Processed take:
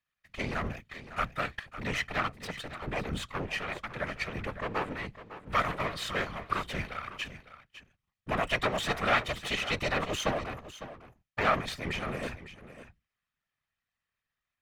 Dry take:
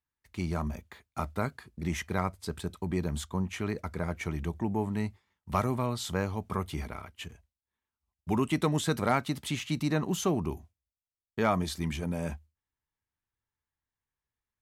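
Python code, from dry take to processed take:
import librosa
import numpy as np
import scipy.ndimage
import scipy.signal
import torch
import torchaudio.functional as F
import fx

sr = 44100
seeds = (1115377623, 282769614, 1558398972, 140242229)

p1 = fx.lower_of_two(x, sr, delay_ms=1.6)
p2 = fx.high_shelf(p1, sr, hz=4700.0, db=-7.0)
p3 = fx.level_steps(p2, sr, step_db=12)
p4 = p2 + F.gain(torch.from_numpy(p3), 0.0).numpy()
p5 = fx.peak_eq(p4, sr, hz=2300.0, db=12.5, octaves=2.4)
p6 = fx.whisperise(p5, sr, seeds[0])
p7 = p6 + 10.0 ** (-13.5 / 20.0) * np.pad(p6, (int(554 * sr / 1000.0), 0))[:len(p6)]
y = F.gain(torch.from_numpy(p7), -5.5).numpy()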